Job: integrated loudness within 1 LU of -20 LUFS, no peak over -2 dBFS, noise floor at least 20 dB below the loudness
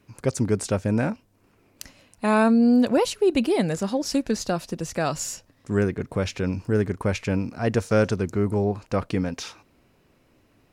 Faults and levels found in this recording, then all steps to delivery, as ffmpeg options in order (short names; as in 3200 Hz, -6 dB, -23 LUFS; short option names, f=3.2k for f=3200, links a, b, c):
loudness -24.0 LUFS; peak -8.5 dBFS; loudness target -20.0 LUFS
-> -af "volume=4dB"